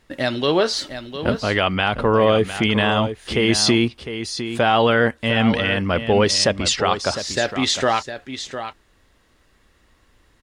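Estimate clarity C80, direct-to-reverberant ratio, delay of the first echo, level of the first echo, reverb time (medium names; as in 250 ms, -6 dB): no reverb, no reverb, 706 ms, -10.5 dB, no reverb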